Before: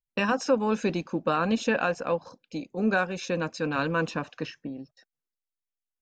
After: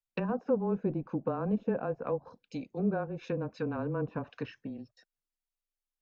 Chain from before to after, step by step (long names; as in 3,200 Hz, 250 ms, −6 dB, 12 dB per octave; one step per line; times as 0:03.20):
treble cut that deepens with the level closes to 690 Hz, closed at −24.5 dBFS
frequency shifter −19 Hz
level −4 dB